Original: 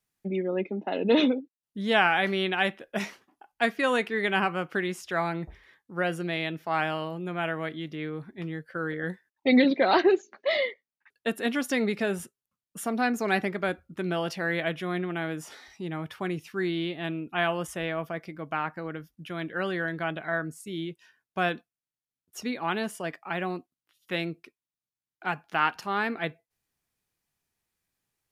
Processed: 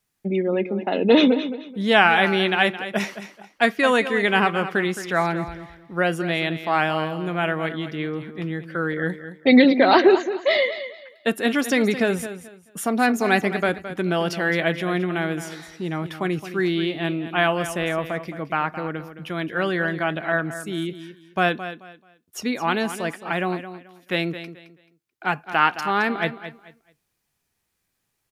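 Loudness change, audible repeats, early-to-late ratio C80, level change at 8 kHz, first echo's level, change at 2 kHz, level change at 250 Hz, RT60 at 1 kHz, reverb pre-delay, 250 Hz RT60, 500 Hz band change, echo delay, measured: +6.5 dB, 2, no reverb audible, +7.0 dB, −12.0 dB, +7.0 dB, +7.0 dB, no reverb audible, no reverb audible, no reverb audible, +7.0 dB, 217 ms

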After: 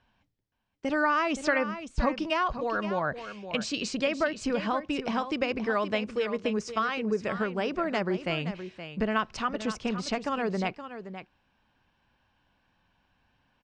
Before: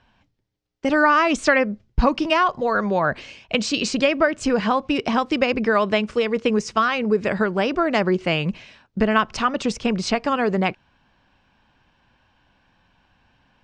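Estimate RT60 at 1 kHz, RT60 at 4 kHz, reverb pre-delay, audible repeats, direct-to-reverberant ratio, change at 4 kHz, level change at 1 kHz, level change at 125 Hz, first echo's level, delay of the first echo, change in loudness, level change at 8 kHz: no reverb audible, no reverb audible, no reverb audible, 1, no reverb audible, −8.5 dB, −8.5 dB, −8.5 dB, −11.0 dB, 521 ms, −9.0 dB, −8.5 dB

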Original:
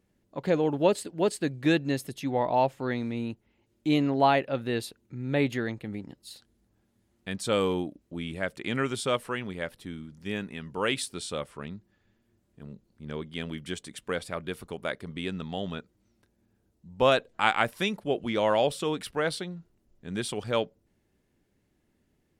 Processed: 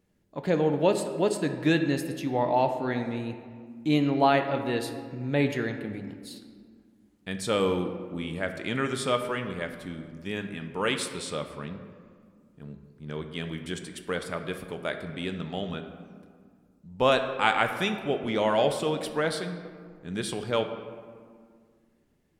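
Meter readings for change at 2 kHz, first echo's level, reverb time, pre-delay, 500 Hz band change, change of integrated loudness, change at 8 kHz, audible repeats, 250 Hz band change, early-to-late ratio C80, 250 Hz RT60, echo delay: +1.0 dB, no echo audible, 2.0 s, 5 ms, +1.0 dB, +1.0 dB, +0.5 dB, no echo audible, +1.0 dB, 9.5 dB, 2.5 s, no echo audible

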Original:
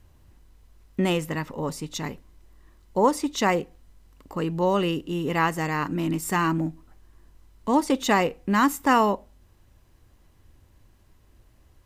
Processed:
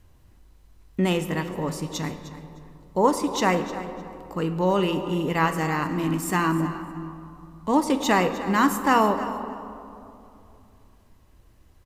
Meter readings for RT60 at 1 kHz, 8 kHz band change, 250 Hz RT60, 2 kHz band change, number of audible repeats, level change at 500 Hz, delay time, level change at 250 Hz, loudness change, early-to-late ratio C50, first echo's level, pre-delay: 2.7 s, +0.5 dB, 3.2 s, +0.5 dB, 2, +1.0 dB, 306 ms, +1.0 dB, +0.5 dB, 9.0 dB, −15.5 dB, 6 ms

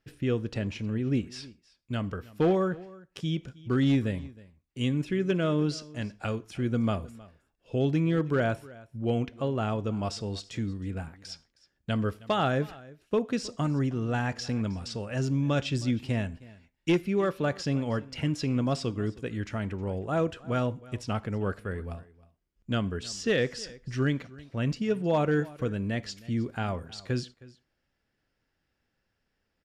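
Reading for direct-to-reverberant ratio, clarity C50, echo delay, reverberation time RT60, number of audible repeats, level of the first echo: no reverb audible, no reverb audible, 315 ms, no reverb audible, 1, −21.0 dB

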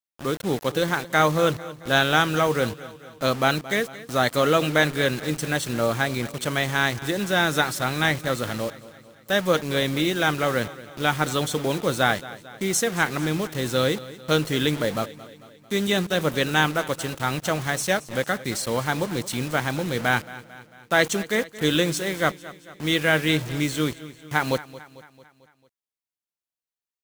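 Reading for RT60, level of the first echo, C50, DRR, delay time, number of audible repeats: no reverb audible, −17.5 dB, no reverb audible, no reverb audible, 223 ms, 4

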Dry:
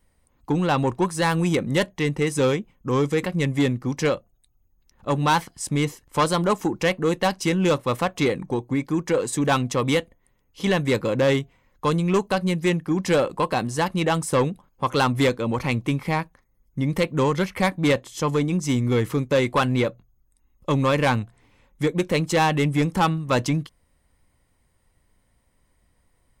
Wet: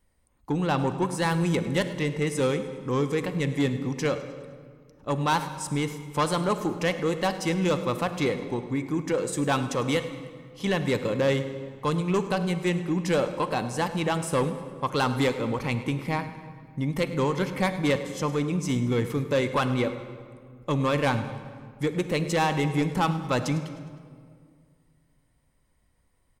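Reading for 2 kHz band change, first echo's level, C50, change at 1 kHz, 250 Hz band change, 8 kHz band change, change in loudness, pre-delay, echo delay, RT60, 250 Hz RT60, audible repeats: −4.0 dB, −17.0 dB, 10.0 dB, −4.0 dB, −3.5 dB, −4.0 dB, −4.0 dB, 35 ms, 103 ms, 2.0 s, 2.4 s, 3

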